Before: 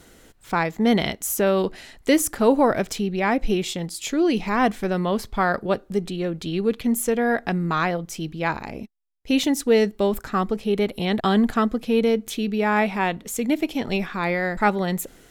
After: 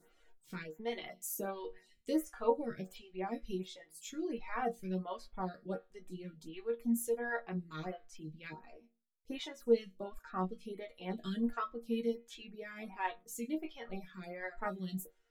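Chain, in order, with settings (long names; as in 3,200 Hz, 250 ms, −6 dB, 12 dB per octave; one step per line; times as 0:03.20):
resonators tuned to a chord D#3 minor, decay 0.29 s
reverb reduction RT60 1.4 s
phaser with staggered stages 1.4 Hz
level +1.5 dB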